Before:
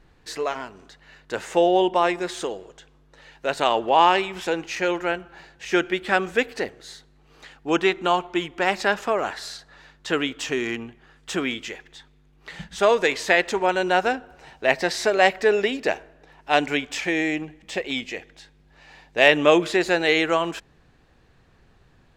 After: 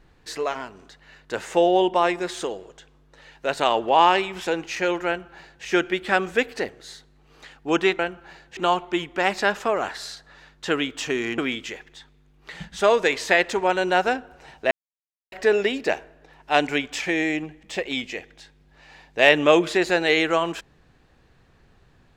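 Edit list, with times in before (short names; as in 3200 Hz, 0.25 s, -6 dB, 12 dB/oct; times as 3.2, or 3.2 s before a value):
5.07–5.65 copy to 7.99
10.8–11.37 cut
14.7–15.31 mute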